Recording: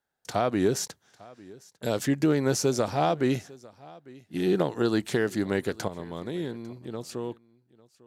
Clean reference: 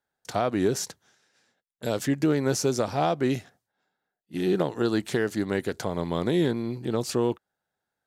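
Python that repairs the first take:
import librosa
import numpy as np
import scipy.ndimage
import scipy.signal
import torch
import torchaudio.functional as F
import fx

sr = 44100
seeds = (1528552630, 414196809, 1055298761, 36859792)

y = fx.fix_interpolate(x, sr, at_s=(0.88,), length_ms=11.0)
y = fx.fix_echo_inverse(y, sr, delay_ms=850, level_db=-22.5)
y = fx.fix_level(y, sr, at_s=5.88, step_db=9.0)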